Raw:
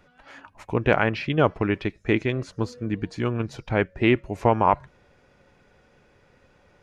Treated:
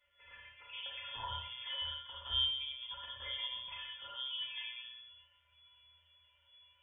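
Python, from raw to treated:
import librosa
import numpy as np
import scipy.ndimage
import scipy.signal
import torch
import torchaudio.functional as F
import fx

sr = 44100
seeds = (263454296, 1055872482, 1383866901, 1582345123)

y = fx.low_shelf(x, sr, hz=470.0, db=-7.5)
y = fx.hum_notches(y, sr, base_hz=60, count=5)
y = fx.over_compress(y, sr, threshold_db=-31.0, ratio=-1.0)
y = fx.stiff_resonator(y, sr, f0_hz=120.0, decay_s=0.68, stiffness=0.03)
y = fx.env_flanger(y, sr, rest_ms=6.3, full_db=-38.0)
y = fx.doubler(y, sr, ms=35.0, db=-14)
y = fx.rev_schroeder(y, sr, rt60_s=0.69, comb_ms=28, drr_db=-1.5)
y = fx.freq_invert(y, sr, carrier_hz=3400)
y = F.gain(torch.from_numpy(y), 1.0).numpy()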